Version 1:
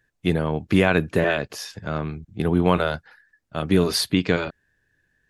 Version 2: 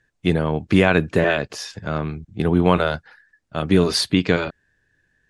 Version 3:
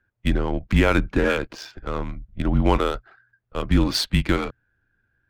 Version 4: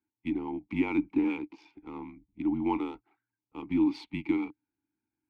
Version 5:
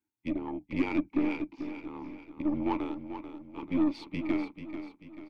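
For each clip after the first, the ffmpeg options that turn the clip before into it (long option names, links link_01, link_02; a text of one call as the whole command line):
ffmpeg -i in.wav -af "lowpass=frequency=9600:width=0.5412,lowpass=frequency=9600:width=1.3066,volume=2.5dB" out.wav
ffmpeg -i in.wav -af "afreqshift=-120,adynamicsmooth=sensitivity=4:basefreq=2400,volume=-2dB" out.wav
ffmpeg -i in.wav -filter_complex "[0:a]asplit=3[link_01][link_02][link_03];[link_01]bandpass=frequency=300:width_type=q:width=8,volume=0dB[link_04];[link_02]bandpass=frequency=870:width_type=q:width=8,volume=-6dB[link_05];[link_03]bandpass=frequency=2240:width_type=q:width=8,volume=-9dB[link_06];[link_04][link_05][link_06]amix=inputs=3:normalize=0,volume=1.5dB" out.wav
ffmpeg -i in.wav -filter_complex "[0:a]aeval=exprs='0.168*(cos(1*acos(clip(val(0)/0.168,-1,1)))-cos(1*PI/2))+0.0133*(cos(6*acos(clip(val(0)/0.168,-1,1)))-cos(6*PI/2))':channel_layout=same,asplit=2[link_01][link_02];[link_02]aecho=0:1:439|878|1317|1756|2195:0.316|0.145|0.0669|0.0308|0.0142[link_03];[link_01][link_03]amix=inputs=2:normalize=0,volume=-1.5dB" out.wav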